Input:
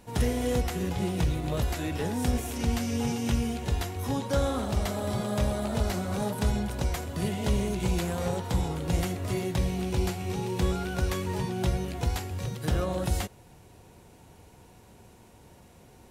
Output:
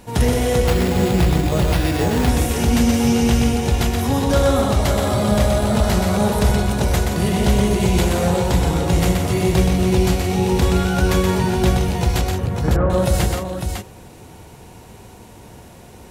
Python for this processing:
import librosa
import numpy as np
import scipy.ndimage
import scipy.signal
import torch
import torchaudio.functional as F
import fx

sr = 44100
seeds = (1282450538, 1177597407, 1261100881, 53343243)

p1 = np.clip(x, -10.0 ** (-25.0 / 20.0), 10.0 ** (-25.0 / 20.0))
p2 = x + (p1 * 10.0 ** (-7.5 / 20.0))
p3 = fx.lowpass(p2, sr, hz=1700.0, slope=24, at=(12.21, 12.9))
p4 = fx.echo_multitap(p3, sr, ms=(124, 171, 551), db=(-4.5, -9.5, -6.0))
p5 = fx.resample_bad(p4, sr, factor=6, down='none', up='hold', at=(0.67, 2.29))
y = p5 * 10.0 ** (7.0 / 20.0)